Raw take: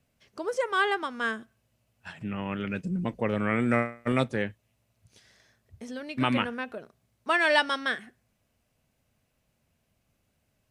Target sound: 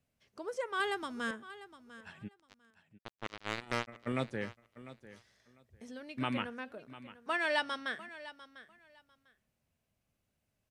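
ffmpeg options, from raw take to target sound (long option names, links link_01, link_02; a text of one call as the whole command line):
ffmpeg -i in.wav -filter_complex "[0:a]asettb=1/sr,asplit=3[link_01][link_02][link_03];[link_01]atrim=end=0.804[link_04];[link_02]atrim=start=0.8:end=1.31,asetpts=PTS-STARTPTS,afade=type=in:duration=0.004:curve=qsin,afade=type=out:start_time=0.506:duration=0.004:curve=qsin,bass=frequency=250:gain=13,treble=frequency=4000:gain=10[link_05];[link_03]atrim=start=1.306[link_06];[link_04][link_05]acrossfade=duration=0.004:curve1=hsin:curve2=qsin[link_07];[link_07][link_06]acrossfade=duration=0.004:curve1=qsin:curve2=hsin,asplit=3[link_08][link_09][link_10];[link_08]afade=type=out:start_time=2.27:duration=0.02[link_11];[link_09]acrusher=bits=2:mix=0:aa=0.5,afade=type=in:start_time=2.27:duration=0.02,afade=type=out:start_time=3.87:duration=0.02[link_12];[link_10]afade=type=in:start_time=3.87:duration=0.02[link_13];[link_11][link_12][link_13]amix=inputs=3:normalize=0,aecho=1:1:698|1396:0.158|0.0285,volume=-9dB" out.wav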